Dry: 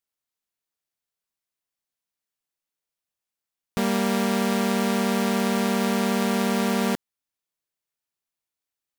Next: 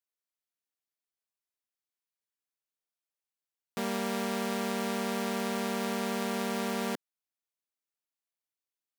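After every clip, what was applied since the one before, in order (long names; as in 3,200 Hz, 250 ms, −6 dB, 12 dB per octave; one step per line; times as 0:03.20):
high-pass filter 220 Hz 12 dB per octave
level −7.5 dB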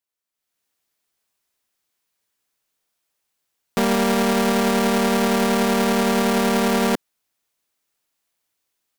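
brickwall limiter −20.5 dBFS, peak gain reduction 3.5 dB
soft clipping −25.5 dBFS, distortion −16 dB
automatic gain control gain up to 12 dB
level +4.5 dB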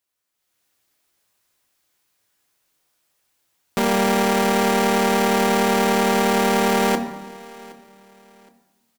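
brickwall limiter −17 dBFS, peak gain reduction 7.5 dB
repeating echo 768 ms, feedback 33%, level −22 dB
convolution reverb RT60 1.1 s, pre-delay 4 ms, DRR 5 dB
level +6 dB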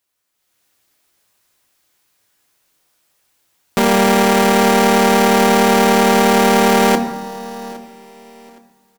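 repeating echo 815 ms, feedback 26%, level −21 dB
level +6 dB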